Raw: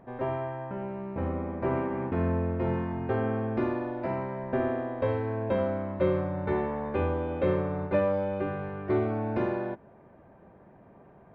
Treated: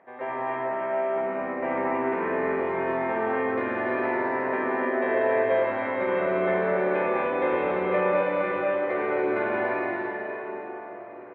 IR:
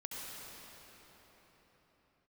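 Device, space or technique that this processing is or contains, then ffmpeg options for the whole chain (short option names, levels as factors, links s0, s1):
station announcement: -filter_complex "[0:a]highpass=470,lowpass=3500,equalizer=f=2000:t=o:w=0.55:g=9,aecho=1:1:207|282.8:0.562|0.501[s0];[1:a]atrim=start_sample=2205[s1];[s0][s1]afir=irnorm=-1:irlink=0,volume=1.88"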